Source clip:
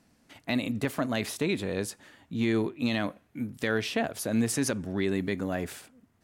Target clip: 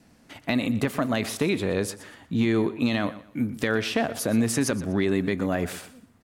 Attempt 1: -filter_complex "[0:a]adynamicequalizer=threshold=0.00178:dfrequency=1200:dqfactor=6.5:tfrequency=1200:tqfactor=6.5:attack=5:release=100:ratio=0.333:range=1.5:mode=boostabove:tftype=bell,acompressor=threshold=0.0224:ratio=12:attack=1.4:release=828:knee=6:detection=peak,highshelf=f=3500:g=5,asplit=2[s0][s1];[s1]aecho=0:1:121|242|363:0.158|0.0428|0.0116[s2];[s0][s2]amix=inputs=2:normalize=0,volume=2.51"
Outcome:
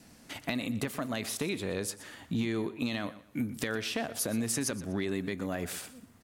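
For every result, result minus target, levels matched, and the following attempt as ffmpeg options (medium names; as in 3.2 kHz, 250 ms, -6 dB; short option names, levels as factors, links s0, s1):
compression: peak gain reduction +10 dB; 8 kHz band +6.0 dB
-filter_complex "[0:a]adynamicequalizer=threshold=0.00178:dfrequency=1200:dqfactor=6.5:tfrequency=1200:tqfactor=6.5:attack=5:release=100:ratio=0.333:range=1.5:mode=boostabove:tftype=bell,acompressor=threshold=0.0794:ratio=12:attack=1.4:release=828:knee=6:detection=peak,highshelf=f=3500:g=5,asplit=2[s0][s1];[s1]aecho=0:1:121|242|363:0.158|0.0428|0.0116[s2];[s0][s2]amix=inputs=2:normalize=0,volume=2.51"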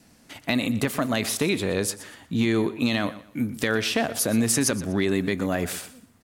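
8 kHz band +6.0 dB
-filter_complex "[0:a]adynamicequalizer=threshold=0.00178:dfrequency=1200:dqfactor=6.5:tfrequency=1200:tqfactor=6.5:attack=5:release=100:ratio=0.333:range=1.5:mode=boostabove:tftype=bell,acompressor=threshold=0.0794:ratio=12:attack=1.4:release=828:knee=6:detection=peak,highshelf=f=3500:g=-3,asplit=2[s0][s1];[s1]aecho=0:1:121|242|363:0.158|0.0428|0.0116[s2];[s0][s2]amix=inputs=2:normalize=0,volume=2.51"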